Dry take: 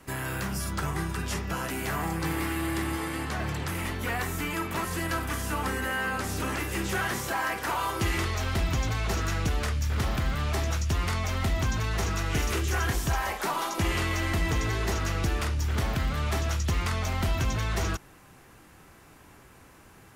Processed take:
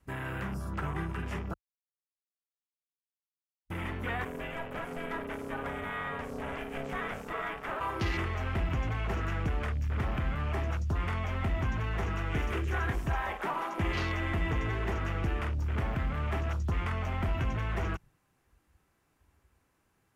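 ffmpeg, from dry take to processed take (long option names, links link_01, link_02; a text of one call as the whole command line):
ffmpeg -i in.wav -filter_complex "[0:a]asplit=3[link_01][link_02][link_03];[link_01]afade=type=out:start_time=4.24:duration=0.02[link_04];[link_02]aeval=exprs='val(0)*sin(2*PI*340*n/s)':channel_layout=same,afade=type=in:start_time=4.24:duration=0.02,afade=type=out:start_time=7.79:duration=0.02[link_05];[link_03]afade=type=in:start_time=7.79:duration=0.02[link_06];[link_04][link_05][link_06]amix=inputs=3:normalize=0,asplit=3[link_07][link_08][link_09];[link_07]atrim=end=1.54,asetpts=PTS-STARTPTS,afade=type=out:start_time=1.536:duration=0.004:curve=hsin[link_10];[link_08]atrim=start=1.54:end=3.7,asetpts=PTS-STARTPTS,volume=0[link_11];[link_09]atrim=start=3.7,asetpts=PTS-STARTPTS,afade=type=in:duration=0.004:curve=hsin[link_12];[link_10][link_11][link_12]concat=n=3:v=0:a=1,afwtdn=0.0141,volume=-3.5dB" out.wav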